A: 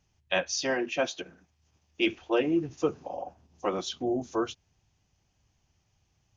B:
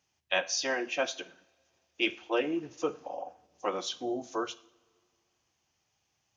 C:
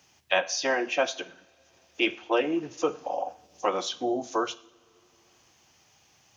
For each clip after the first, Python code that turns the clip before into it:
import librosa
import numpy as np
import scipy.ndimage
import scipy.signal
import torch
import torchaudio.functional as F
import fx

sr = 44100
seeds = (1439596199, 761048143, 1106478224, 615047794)

y1 = fx.highpass(x, sr, hz=530.0, slope=6)
y1 = fx.rev_double_slope(y1, sr, seeds[0], early_s=0.53, late_s=2.2, knee_db=-21, drr_db=14.0)
y2 = fx.dynamic_eq(y1, sr, hz=810.0, q=0.96, threshold_db=-42.0, ratio=4.0, max_db=4)
y2 = fx.band_squash(y2, sr, depth_pct=40)
y2 = y2 * 10.0 ** (3.5 / 20.0)